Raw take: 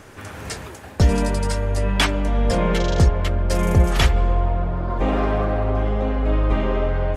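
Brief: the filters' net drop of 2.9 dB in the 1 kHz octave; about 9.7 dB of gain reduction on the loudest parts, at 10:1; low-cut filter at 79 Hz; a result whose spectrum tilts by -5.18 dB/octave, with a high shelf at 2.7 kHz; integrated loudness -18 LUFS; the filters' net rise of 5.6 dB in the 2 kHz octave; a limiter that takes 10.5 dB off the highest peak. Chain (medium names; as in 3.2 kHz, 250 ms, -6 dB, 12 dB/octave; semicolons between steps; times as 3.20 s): high-pass 79 Hz; peaking EQ 1 kHz -6.5 dB; peaking EQ 2 kHz +7 dB; treble shelf 2.7 kHz +4 dB; compression 10:1, threshold -22 dBFS; trim +11 dB; peak limiter -8 dBFS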